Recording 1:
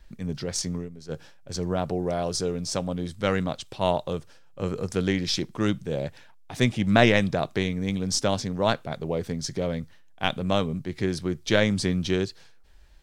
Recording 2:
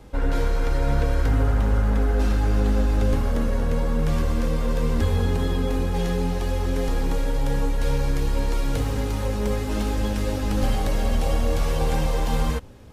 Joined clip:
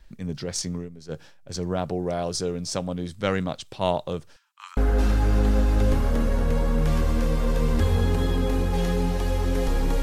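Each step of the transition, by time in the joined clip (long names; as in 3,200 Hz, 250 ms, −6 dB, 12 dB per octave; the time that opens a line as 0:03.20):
recording 1
0:04.36–0:04.77: Butterworth high-pass 920 Hz 72 dB per octave
0:04.77: continue with recording 2 from 0:01.98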